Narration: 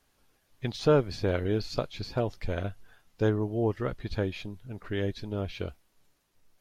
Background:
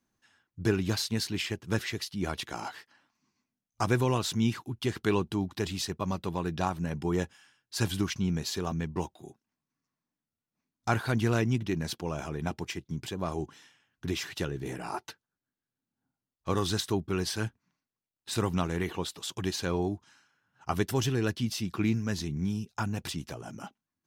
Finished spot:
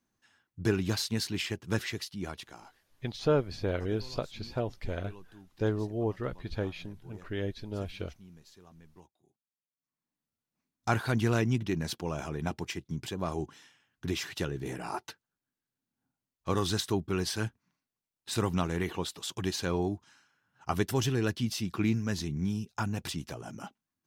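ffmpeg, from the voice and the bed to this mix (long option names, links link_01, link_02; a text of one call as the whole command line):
ffmpeg -i stem1.wav -i stem2.wav -filter_complex "[0:a]adelay=2400,volume=-3.5dB[link_01];[1:a]volume=22dB,afade=type=out:start_time=1.86:duration=0.89:silence=0.0749894,afade=type=in:start_time=9.76:duration=0.47:silence=0.0707946[link_02];[link_01][link_02]amix=inputs=2:normalize=0" out.wav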